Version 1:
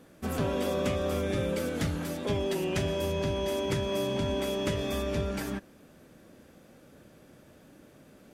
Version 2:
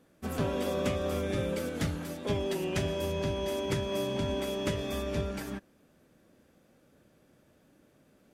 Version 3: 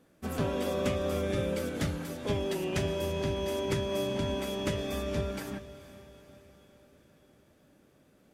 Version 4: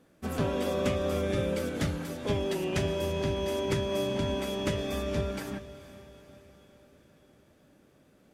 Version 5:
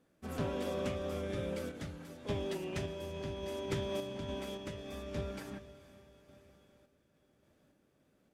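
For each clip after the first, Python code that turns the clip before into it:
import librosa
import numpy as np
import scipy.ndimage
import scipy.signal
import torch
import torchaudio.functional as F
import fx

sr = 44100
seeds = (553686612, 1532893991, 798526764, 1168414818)

y1 = fx.upward_expand(x, sr, threshold_db=-43.0, expansion=1.5)
y2 = fx.echo_diffused(y1, sr, ms=463, feedback_pct=52, wet_db=-15.5)
y3 = fx.high_shelf(y2, sr, hz=11000.0, db=-4.0)
y3 = F.gain(torch.from_numpy(y3), 1.5).numpy()
y4 = fx.tremolo_random(y3, sr, seeds[0], hz=3.5, depth_pct=55)
y4 = fx.doppler_dist(y4, sr, depth_ms=0.14)
y4 = F.gain(torch.from_numpy(y4), -6.5).numpy()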